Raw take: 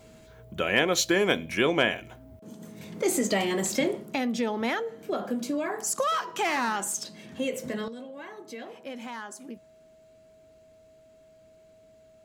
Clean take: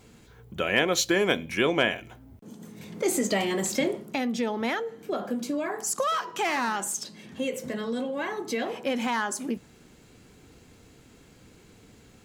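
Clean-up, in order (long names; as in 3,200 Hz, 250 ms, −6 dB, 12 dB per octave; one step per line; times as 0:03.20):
notch filter 640 Hz, Q 30
level correction +11 dB, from 0:07.88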